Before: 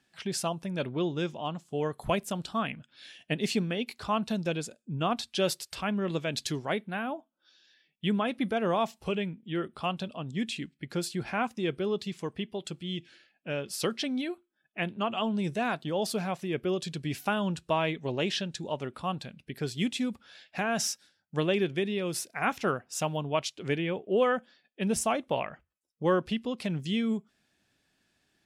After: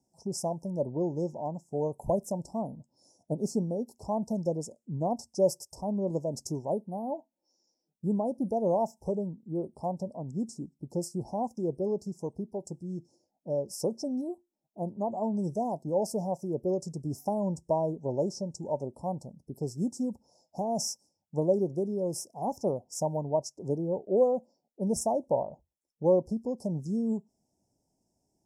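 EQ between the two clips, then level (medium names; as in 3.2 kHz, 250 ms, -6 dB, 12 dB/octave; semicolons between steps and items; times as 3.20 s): Chebyshev band-stop 930–5300 Hz, order 5; treble shelf 8.9 kHz -5 dB; dynamic bell 560 Hz, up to +6 dB, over -48 dBFS, Q 5.4; 0.0 dB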